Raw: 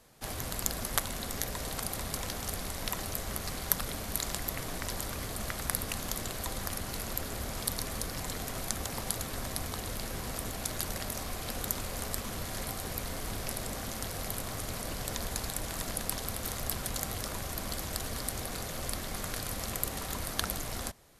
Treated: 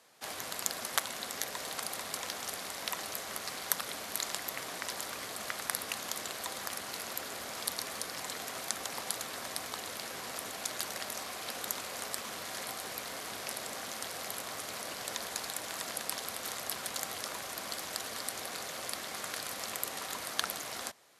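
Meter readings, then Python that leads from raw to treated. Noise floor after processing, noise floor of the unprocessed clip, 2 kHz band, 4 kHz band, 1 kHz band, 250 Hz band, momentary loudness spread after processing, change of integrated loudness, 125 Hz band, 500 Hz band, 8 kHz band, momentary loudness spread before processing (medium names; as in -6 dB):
-43 dBFS, -39 dBFS, +1.0 dB, +1.0 dB, 0.0 dB, -9.0 dB, 4 LU, -2.0 dB, -17.5 dB, -3.0 dB, -1.5 dB, 4 LU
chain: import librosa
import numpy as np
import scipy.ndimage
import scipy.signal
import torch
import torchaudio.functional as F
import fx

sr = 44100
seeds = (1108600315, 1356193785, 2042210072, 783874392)

y = fx.weighting(x, sr, curve='A')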